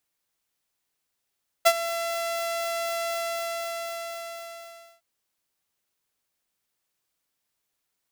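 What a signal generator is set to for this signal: ADSR saw 674 Hz, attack 17 ms, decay 58 ms, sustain -14.5 dB, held 1.46 s, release 1.9 s -10 dBFS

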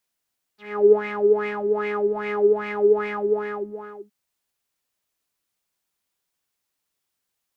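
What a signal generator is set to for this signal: synth patch with filter wobble G#4, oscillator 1 triangle, oscillator 2 saw, interval 0 st, oscillator 2 level -3.5 dB, sub -11 dB, noise -10 dB, filter lowpass, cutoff 550 Hz, Q 6.3, filter envelope 3 oct, filter decay 0.05 s, filter sustain 25%, attack 0.349 s, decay 0.09 s, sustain -3.5 dB, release 0.90 s, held 2.62 s, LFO 2.5 Hz, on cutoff 1.3 oct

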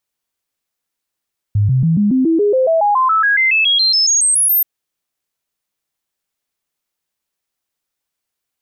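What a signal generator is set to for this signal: stepped sine 103 Hz up, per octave 3, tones 22, 0.14 s, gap 0.00 s -10 dBFS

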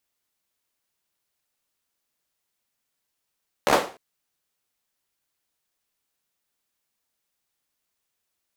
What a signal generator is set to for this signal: hand clap length 0.30 s, bursts 5, apart 14 ms, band 540 Hz, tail 0.36 s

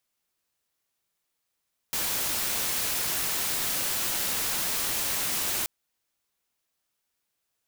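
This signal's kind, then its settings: noise white, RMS -28.5 dBFS 3.73 s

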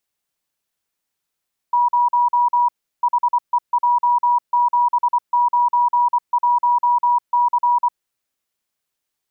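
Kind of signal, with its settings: Morse "0 HEJ791C" 24 wpm 967 Hz -12.5 dBFS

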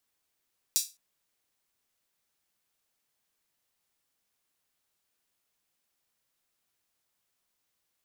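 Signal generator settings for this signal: open hi-hat length 0.21 s, high-pass 5100 Hz, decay 0.26 s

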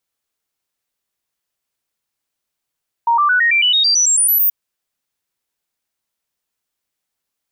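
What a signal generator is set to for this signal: stepped sine 934 Hz up, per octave 3, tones 13, 0.11 s, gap 0.00 s -10.5 dBFS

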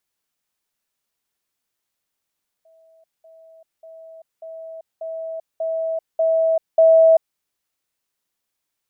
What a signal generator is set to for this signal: level ladder 650 Hz -50.5 dBFS, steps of 6 dB, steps 8, 0.39 s 0.20 s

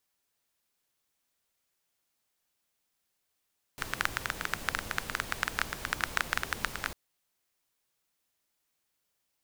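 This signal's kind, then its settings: rain from filtered ticks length 3.15 s, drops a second 12, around 1500 Hz, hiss -6 dB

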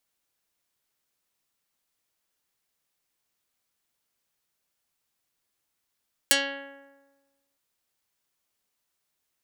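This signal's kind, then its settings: plucked string C#4, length 1.26 s, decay 1.31 s, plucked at 0.22, dark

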